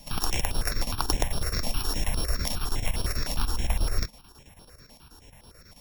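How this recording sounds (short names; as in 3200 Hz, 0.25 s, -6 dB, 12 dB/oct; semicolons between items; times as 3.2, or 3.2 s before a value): a buzz of ramps at a fixed pitch in blocks of 8 samples; chopped level 9.2 Hz, depth 65%, duty 75%; notches that jump at a steady rate 9.8 Hz 380–7000 Hz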